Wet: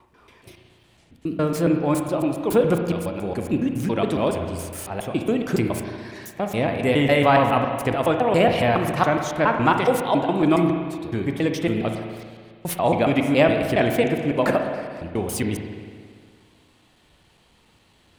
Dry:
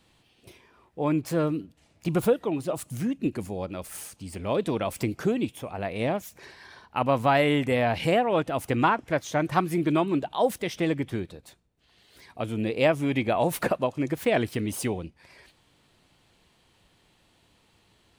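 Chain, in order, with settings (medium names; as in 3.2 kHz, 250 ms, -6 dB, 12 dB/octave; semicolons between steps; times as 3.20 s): slices played last to first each 139 ms, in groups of 7; spring tank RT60 1.9 s, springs 35/58 ms, chirp 35 ms, DRR 4 dB; trim +4 dB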